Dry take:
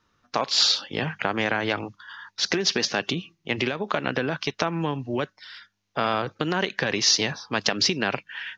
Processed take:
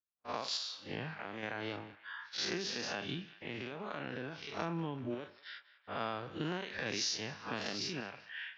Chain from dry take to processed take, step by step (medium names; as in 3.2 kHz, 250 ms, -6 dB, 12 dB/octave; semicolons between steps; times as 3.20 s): spectral blur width 146 ms; reverb removal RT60 0.92 s; level-controlled noise filter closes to 2.7 kHz, open at -25 dBFS; gate -50 dBFS, range -36 dB; compression, threshold -35 dBFS, peak gain reduction 14 dB; random-step tremolo; band-passed feedback delay 192 ms, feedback 73%, band-pass 2 kHz, level -16 dB; trim +1.5 dB